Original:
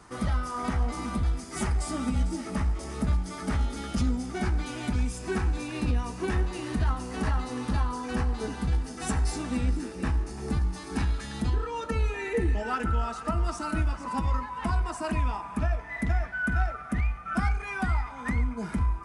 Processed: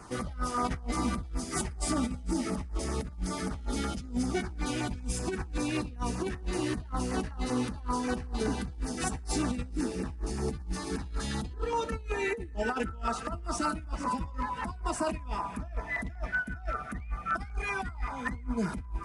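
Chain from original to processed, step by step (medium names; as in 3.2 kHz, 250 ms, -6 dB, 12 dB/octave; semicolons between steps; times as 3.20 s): compressor with a negative ratio -31 dBFS, ratio -0.5; LFO notch saw down 5.2 Hz 660–4000 Hz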